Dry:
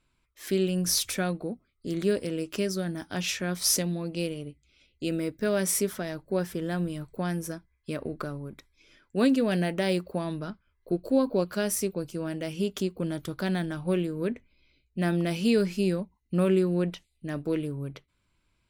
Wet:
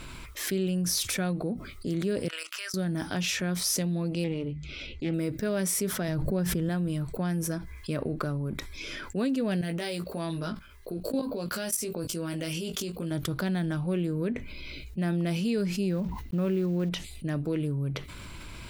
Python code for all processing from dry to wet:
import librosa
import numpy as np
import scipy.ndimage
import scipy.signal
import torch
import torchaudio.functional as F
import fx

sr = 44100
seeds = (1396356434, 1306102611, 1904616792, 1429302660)

y = fx.chain(x, sr, fx.ladder_highpass(hz=1100.0, resonance_pct=40),
    fx.level_steps(step_db=14), at=(2.28, 2.74))
y = fx.chain(y, sr, fx.air_absorb(metres=130.0),
    fx.hum_notches(base_hz=50, count=5),
    fx.doppler_dist(depth_ms=0.2), at=(4.24, 5.14))
y = fx.chain(y, sr, fx.low_shelf(hz=180.0, db=10.0),
    fx.pre_swell(db_per_s=49.0), at=(6.08, 6.69))
y = fx.chain(y, sr, fx.high_shelf(hz=2400.0, db=8.0),
    fx.level_steps(step_db=21),
    fx.doubler(ms=18.0, db=-5), at=(9.61, 13.11))
y = fx.chain(y, sr, fx.block_float(bits=5),
    fx.peak_eq(hz=9100.0, db=-12.0, octaves=1.3),
    fx.sustainer(db_per_s=150.0), at=(15.89, 16.89))
y = fx.dynamic_eq(y, sr, hz=140.0, q=1.2, threshold_db=-41.0, ratio=4.0, max_db=6)
y = fx.env_flatten(y, sr, amount_pct=70)
y = F.gain(torch.from_numpy(y), -8.0).numpy()